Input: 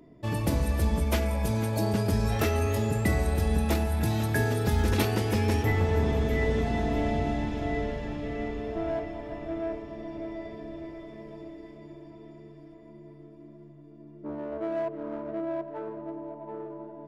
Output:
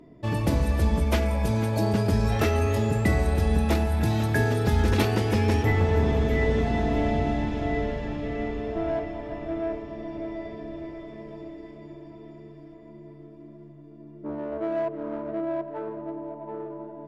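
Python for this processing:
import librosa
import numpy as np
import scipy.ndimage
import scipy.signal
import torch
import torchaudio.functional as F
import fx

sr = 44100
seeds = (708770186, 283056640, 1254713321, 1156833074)

y = fx.high_shelf(x, sr, hz=8700.0, db=-10.0)
y = F.gain(torch.from_numpy(y), 3.0).numpy()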